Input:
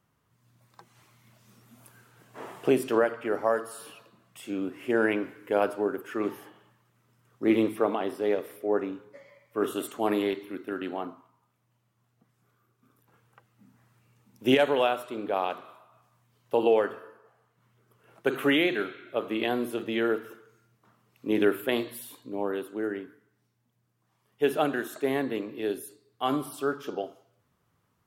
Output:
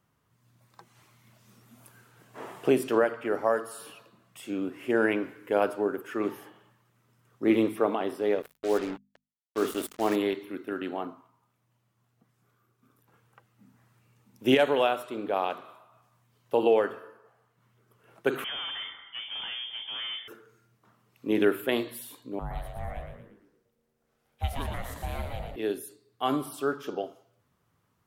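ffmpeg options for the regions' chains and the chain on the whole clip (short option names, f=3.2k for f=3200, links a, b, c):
-filter_complex "[0:a]asettb=1/sr,asplit=3[a][b][c];[a]atrim=end=8.424[d];[b]atrim=start=8.42:end=10.16,asetpts=PTS-STARTPTS,afade=t=in:d=0.004:c=qsin,afade=t=out:st=1.736:d=0.004:c=qsin,acrusher=bits=5:mix=0:aa=0.5,bandreject=f=50:t=h:w=6,bandreject=f=100:t=h:w=6,bandreject=f=150:t=h:w=6,bandreject=f=200:t=h:w=6,bandreject=f=250:t=h:w=6[e];[c]atrim=start=10.156[f];[d][e]acrossfade=d=0.004:c1=hsin:c2=qsin[g];[g][f]acrossfade=d=0.004:c1=qsin:c2=hsin,asettb=1/sr,asplit=3[h][i][j];[h]atrim=end=18.444[k];[i]atrim=start=18.44:end=20.28,asetpts=PTS-STARTPTS,afade=t=in:d=0.004:c=qsin,afade=t=out:st=1.836:d=0.004:c=qsin,aeval=exprs='(tanh(50.1*val(0)+0.3)-tanh(0.3))/50.1':c=same,lowpass=f=3k:t=q:w=0.5098,lowpass=f=3k:t=q:w=0.6013,lowpass=f=3k:t=q:w=0.9,lowpass=f=3k:t=q:w=2.563,afreqshift=-3500[l];[j]atrim=start=20.276[m];[k][l]acrossfade=d=0.004:c1=hsin:c2=qsin[n];[n][m]acrossfade=d=0.004:c1=qsin:c2=hsin,asettb=1/sr,asplit=3[o][p][q];[o]atrim=end=22.394[r];[p]atrim=start=22.39:end=25.56,asetpts=PTS-STARTPTS,afade=t=in:d=0.004:c=qsin,afade=t=out:st=3.166:d=0.004:c=qsin,aeval=exprs='val(0)*sin(2*PI*350*n/s)':c=same,acrossover=split=170|3000[s][t][u];[t]acompressor=threshold=-41dB:ratio=2:attack=3.2:release=140:knee=2.83:detection=peak[v];[s][v][u]amix=inputs=3:normalize=0,asplit=7[w][x][y][z][aa][ab][ac];[x]adelay=115,afreqshift=-86,volume=-5dB[ad];[y]adelay=230,afreqshift=-172,volume=-11.9dB[ae];[z]adelay=345,afreqshift=-258,volume=-18.9dB[af];[aa]adelay=460,afreqshift=-344,volume=-25.8dB[ag];[ab]adelay=575,afreqshift=-430,volume=-32.7dB[ah];[ac]adelay=690,afreqshift=-516,volume=-39.7dB[ai];[w][ad][ae][af][ag][ah][ai]amix=inputs=7:normalize=0,atrim=end_sample=139797[aj];[q]atrim=start=25.556[ak];[r][aj]acrossfade=d=0.004:c1=hsin:c2=qsin[al];[al][ak]acrossfade=d=0.004:c1=qsin:c2=hsin"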